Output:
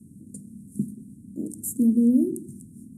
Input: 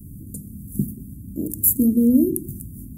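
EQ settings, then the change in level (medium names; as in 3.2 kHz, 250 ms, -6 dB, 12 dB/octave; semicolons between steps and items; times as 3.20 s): cabinet simulation 160–9300 Hz, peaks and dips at 220 Hz +6 dB, 1.3 kHz +7 dB, 8.7 kHz +6 dB; -6.0 dB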